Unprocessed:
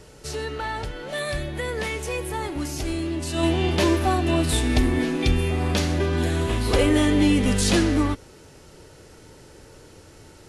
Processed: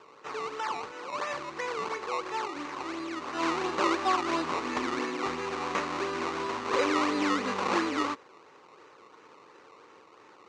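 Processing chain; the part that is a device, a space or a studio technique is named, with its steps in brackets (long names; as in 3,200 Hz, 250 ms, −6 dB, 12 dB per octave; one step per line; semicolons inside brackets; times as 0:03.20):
circuit-bent sampling toy (sample-and-hold swept by an LFO 19×, swing 100% 2.9 Hz; loudspeaker in its box 460–5,900 Hz, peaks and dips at 650 Hz −8 dB, 1,100 Hz +8 dB, 1,600 Hz −3 dB, 3,300 Hz −6 dB, 5,100 Hz −5 dB)
level −2 dB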